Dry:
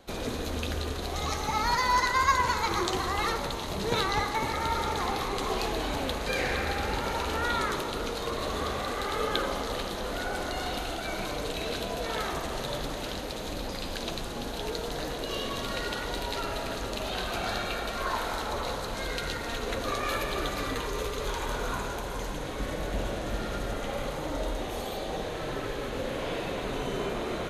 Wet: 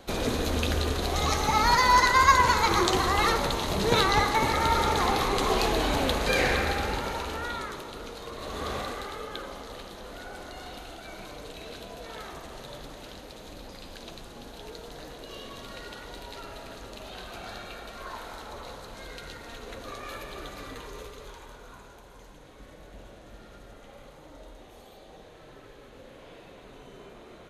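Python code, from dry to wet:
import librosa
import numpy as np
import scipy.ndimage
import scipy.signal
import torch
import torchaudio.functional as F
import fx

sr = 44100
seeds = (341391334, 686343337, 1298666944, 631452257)

y = fx.gain(x, sr, db=fx.line((6.45, 5.0), (7.73, -7.5), (8.34, -7.5), (8.76, 0.0), (9.24, -9.0), (20.96, -9.0), (21.59, -16.0)))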